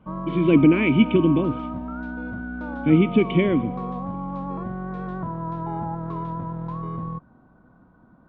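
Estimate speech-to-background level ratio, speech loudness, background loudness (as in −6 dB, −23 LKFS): 11.5 dB, −19.5 LKFS, −31.0 LKFS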